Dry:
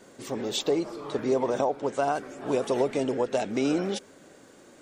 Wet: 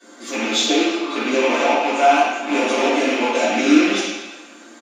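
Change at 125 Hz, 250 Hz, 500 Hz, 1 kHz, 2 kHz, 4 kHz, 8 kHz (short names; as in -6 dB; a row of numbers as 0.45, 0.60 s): n/a, +11.0 dB, +6.5 dB, +13.0 dB, +19.0 dB, +14.5 dB, +12.5 dB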